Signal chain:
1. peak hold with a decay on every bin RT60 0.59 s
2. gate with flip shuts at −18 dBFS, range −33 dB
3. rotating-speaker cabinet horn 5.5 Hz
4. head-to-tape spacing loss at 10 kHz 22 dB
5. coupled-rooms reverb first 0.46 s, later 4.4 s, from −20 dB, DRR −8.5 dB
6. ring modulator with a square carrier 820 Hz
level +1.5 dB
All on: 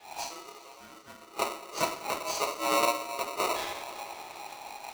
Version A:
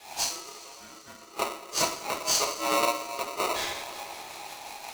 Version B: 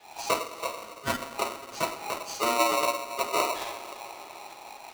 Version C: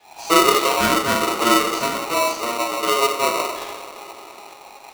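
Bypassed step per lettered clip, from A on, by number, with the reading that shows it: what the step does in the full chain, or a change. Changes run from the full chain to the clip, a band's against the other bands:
4, 8 kHz band +6.5 dB
1, 125 Hz band +3.0 dB
2, change in momentary loudness spread −2 LU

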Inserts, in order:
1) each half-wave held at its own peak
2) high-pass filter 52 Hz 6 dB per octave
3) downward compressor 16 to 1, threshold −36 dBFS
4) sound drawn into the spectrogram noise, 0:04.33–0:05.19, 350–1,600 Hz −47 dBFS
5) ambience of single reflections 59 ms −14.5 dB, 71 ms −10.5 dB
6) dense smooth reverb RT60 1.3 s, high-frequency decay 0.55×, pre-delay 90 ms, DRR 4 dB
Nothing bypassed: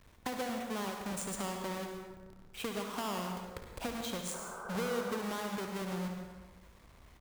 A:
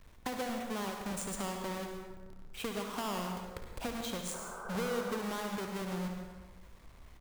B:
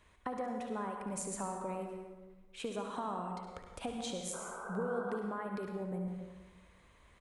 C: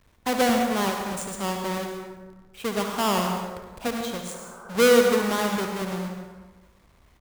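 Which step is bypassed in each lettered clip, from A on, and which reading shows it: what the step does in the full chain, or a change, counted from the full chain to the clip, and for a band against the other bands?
2, change in momentary loudness spread +1 LU
1, distortion level −5 dB
3, average gain reduction 9.0 dB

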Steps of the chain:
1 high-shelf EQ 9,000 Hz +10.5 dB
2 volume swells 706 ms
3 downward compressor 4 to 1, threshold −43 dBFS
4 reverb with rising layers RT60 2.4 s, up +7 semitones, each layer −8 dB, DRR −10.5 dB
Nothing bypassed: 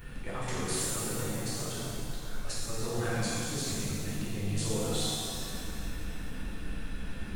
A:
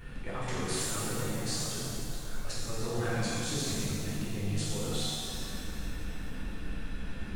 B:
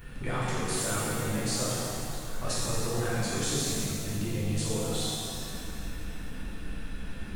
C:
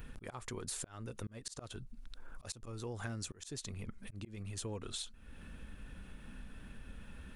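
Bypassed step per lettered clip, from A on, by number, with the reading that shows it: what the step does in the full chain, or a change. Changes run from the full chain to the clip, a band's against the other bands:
1, change in momentary loudness spread −1 LU
2, change in momentary loudness spread +2 LU
4, change in crest factor +5.0 dB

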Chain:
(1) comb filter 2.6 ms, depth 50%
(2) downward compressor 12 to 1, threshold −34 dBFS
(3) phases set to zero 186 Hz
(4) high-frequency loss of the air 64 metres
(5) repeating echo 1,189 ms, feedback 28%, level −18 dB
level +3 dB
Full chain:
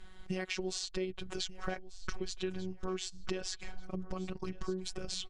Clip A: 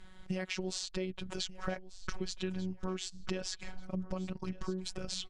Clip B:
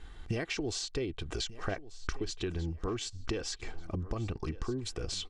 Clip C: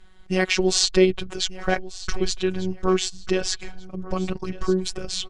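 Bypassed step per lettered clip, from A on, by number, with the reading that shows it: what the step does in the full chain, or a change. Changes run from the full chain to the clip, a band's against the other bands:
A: 1, change in momentary loudness spread −1 LU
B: 3, 125 Hz band +6.0 dB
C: 2, change in momentary loudness spread +5 LU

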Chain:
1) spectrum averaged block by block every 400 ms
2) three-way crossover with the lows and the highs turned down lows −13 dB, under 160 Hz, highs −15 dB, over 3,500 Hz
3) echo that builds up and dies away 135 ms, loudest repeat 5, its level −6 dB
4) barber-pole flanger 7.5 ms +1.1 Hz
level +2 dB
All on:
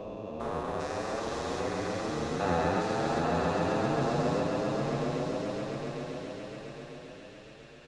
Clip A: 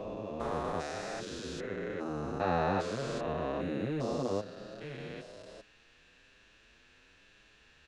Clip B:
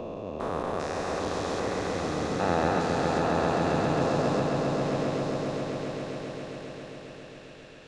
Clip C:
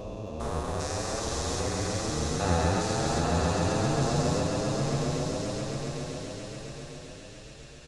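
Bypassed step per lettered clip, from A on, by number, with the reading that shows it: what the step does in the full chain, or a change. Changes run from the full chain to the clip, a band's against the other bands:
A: 3, change in momentary loudness spread −2 LU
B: 4, change in integrated loudness +3.0 LU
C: 2, 8 kHz band +11.5 dB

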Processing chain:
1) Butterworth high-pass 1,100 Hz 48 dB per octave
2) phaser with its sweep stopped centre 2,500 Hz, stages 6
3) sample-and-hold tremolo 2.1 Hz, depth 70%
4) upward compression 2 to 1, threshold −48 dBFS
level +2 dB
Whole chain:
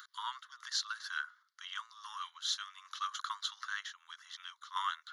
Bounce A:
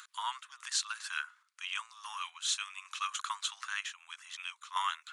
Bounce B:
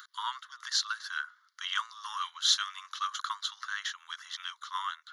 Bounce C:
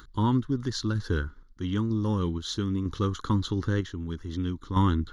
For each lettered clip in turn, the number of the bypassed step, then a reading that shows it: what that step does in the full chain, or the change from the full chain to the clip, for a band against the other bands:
2, 8 kHz band +5.0 dB
3, change in momentary loudness spread +1 LU
1, 1 kHz band +5.5 dB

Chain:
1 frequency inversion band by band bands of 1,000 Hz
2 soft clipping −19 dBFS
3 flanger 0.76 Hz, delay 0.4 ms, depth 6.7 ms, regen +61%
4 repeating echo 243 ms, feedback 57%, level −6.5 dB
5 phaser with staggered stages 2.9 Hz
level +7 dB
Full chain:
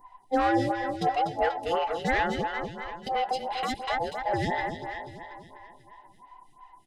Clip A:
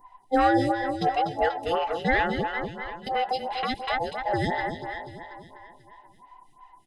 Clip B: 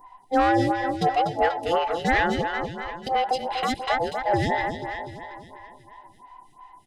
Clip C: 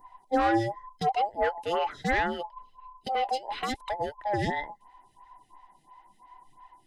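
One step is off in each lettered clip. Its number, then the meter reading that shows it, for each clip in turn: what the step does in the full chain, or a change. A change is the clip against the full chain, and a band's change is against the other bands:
2, distortion level −14 dB
3, change in integrated loudness +4.5 LU
4, change in momentary loudness spread −1 LU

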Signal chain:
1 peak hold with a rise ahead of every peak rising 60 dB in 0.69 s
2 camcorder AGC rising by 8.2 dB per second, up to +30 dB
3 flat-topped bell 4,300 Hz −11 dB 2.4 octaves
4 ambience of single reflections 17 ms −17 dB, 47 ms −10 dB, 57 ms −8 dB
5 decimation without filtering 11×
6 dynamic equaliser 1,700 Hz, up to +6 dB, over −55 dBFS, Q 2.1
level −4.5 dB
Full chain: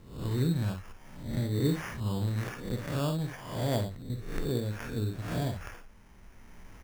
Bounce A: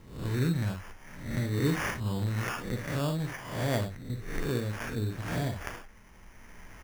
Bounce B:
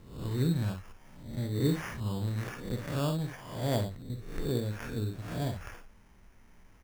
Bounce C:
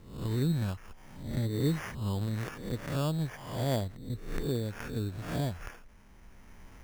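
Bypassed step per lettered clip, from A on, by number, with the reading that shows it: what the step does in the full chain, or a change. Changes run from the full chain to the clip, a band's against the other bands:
3, 2 kHz band +6.0 dB
2, change in momentary loudness spread +1 LU
4, change in momentary loudness spread −1 LU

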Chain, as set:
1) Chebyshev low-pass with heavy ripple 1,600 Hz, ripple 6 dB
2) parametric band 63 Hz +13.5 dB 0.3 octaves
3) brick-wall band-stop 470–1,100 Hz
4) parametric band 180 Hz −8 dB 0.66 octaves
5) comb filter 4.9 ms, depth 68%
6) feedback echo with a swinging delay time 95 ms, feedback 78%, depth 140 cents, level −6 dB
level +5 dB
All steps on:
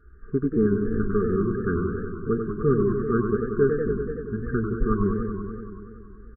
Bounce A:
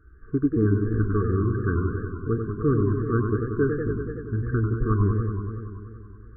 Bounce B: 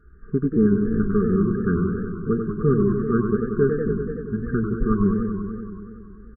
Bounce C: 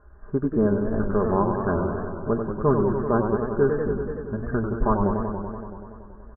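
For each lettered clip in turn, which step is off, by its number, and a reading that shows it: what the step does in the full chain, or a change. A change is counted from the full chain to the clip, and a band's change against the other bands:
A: 5, 125 Hz band +6.5 dB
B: 4, 250 Hz band +4.0 dB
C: 3, 1 kHz band +7.5 dB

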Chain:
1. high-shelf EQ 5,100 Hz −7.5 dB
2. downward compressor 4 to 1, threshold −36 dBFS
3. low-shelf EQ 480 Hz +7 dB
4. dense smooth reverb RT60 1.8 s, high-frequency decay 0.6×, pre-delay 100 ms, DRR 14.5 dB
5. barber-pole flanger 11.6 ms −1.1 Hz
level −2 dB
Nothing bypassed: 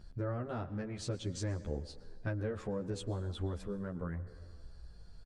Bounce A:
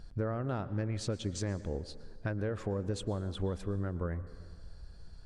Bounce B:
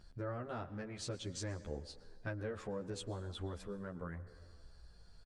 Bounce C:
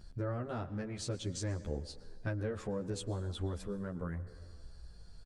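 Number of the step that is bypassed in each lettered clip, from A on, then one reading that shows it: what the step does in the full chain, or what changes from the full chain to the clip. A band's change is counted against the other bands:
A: 5, change in integrated loudness +3.0 LU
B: 3, 125 Hz band −5.5 dB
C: 1, 8 kHz band +3.5 dB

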